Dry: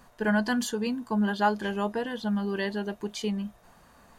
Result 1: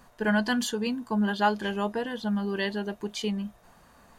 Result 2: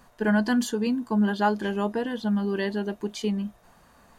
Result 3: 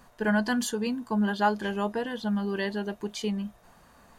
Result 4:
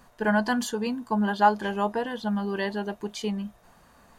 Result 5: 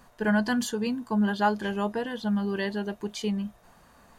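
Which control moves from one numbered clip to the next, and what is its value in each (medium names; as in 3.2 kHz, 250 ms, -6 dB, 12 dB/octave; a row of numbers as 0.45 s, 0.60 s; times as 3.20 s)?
dynamic bell, frequency: 3.1 kHz, 290 Hz, 9.8 kHz, 860 Hz, 110 Hz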